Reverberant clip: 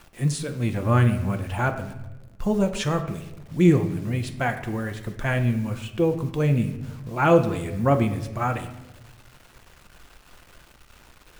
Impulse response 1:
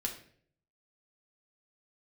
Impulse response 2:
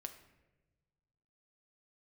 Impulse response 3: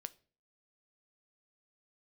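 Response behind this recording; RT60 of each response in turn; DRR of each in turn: 2; 0.55, 1.1, 0.40 seconds; 0.5, 6.5, 12.5 decibels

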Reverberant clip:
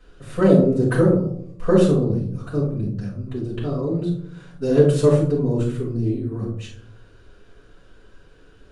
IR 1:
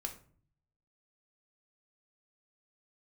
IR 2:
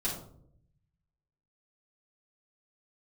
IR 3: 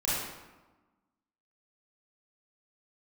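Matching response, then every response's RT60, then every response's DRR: 2; 0.50, 0.65, 1.2 seconds; 4.0, −7.5, −9.0 decibels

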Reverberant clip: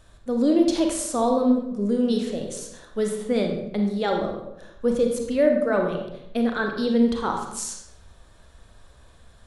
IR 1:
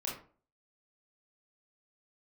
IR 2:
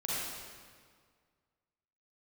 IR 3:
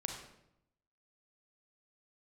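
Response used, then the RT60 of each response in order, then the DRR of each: 3; 0.40, 1.9, 0.80 seconds; −4.5, −7.5, 2.5 decibels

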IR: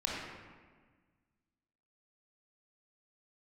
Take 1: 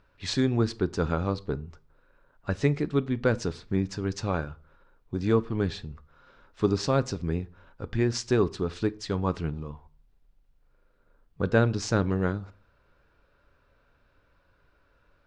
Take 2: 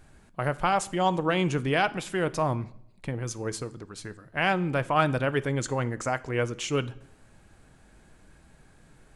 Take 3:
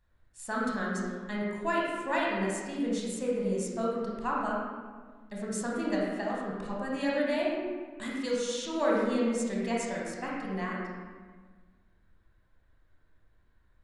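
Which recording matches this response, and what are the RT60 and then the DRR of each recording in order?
3; 0.45, 0.70, 1.5 seconds; 14.0, 14.0, −4.0 decibels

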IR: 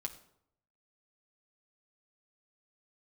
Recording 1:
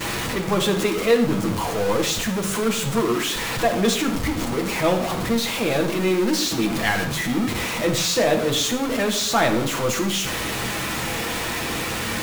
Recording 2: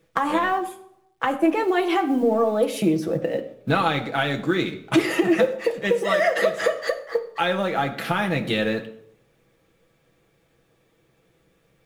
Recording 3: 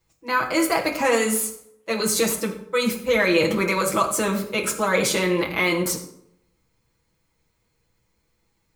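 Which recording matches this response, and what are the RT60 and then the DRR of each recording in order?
2; 0.70, 0.70, 0.70 seconds; −12.5, 3.5, −5.0 decibels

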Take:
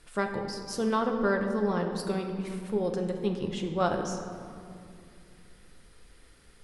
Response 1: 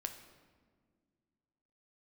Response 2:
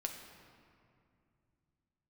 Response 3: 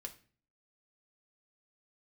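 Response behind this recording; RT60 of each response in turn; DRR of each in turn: 2; 1.8, 2.5, 0.40 seconds; 6.0, 2.5, 3.5 decibels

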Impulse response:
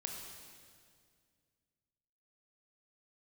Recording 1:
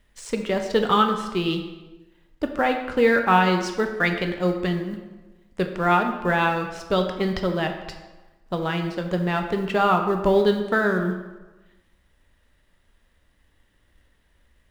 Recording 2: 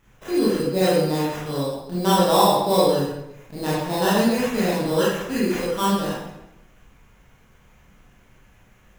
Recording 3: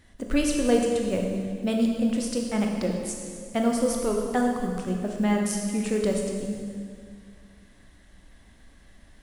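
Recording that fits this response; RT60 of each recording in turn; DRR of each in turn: 3; 1.2, 0.90, 2.1 seconds; 4.5, −8.5, 1.0 decibels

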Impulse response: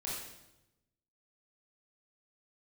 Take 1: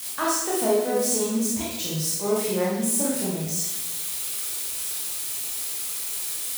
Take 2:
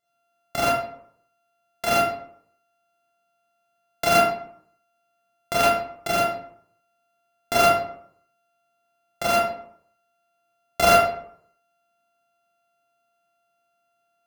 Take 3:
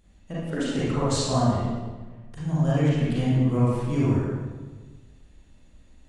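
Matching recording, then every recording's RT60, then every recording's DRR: 1; 0.95, 0.65, 1.4 seconds; −6.5, −8.0, −9.0 decibels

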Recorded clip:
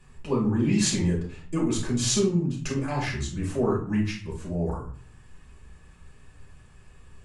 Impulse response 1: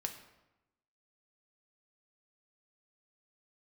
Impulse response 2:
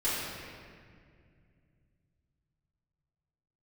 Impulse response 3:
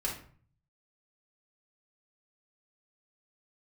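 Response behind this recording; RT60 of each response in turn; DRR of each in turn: 3; 0.95, 2.1, 0.45 seconds; 4.5, −11.5, −4.5 decibels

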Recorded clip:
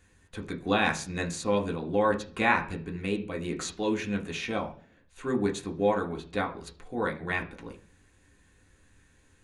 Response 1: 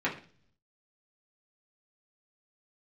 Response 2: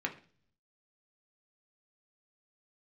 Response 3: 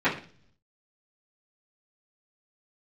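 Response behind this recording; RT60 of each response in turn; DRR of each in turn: 2; 0.45, 0.45, 0.45 seconds; −6.5, 1.5, −15.5 decibels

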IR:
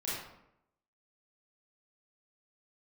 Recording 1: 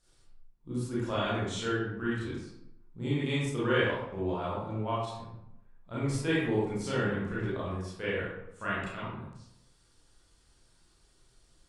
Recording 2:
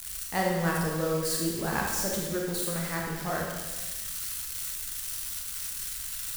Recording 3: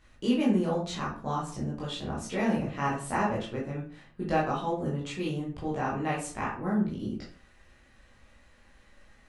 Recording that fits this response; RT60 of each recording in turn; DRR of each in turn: 1; 0.80, 1.2, 0.40 seconds; −9.0, −2.5, −6.5 decibels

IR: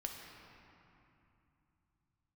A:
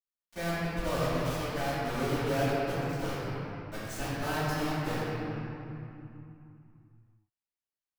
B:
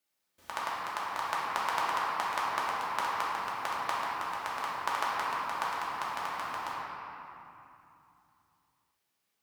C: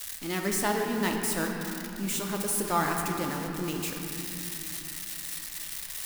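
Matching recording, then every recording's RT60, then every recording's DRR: C; 2.8, 2.8, 2.8 seconds; −17.5, −7.5, 1.0 decibels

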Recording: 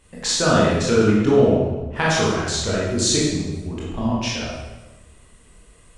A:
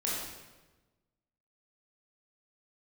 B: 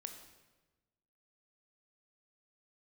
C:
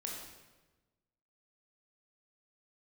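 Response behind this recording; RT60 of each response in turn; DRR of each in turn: A; 1.2, 1.2, 1.2 seconds; −6.0, 5.5, −2.0 decibels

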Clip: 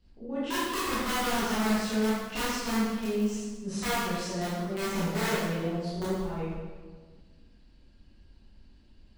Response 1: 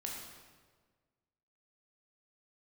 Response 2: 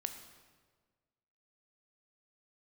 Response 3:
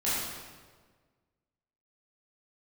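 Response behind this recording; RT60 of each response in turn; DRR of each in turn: 3; 1.5, 1.5, 1.5 seconds; −2.0, 7.0, −11.0 decibels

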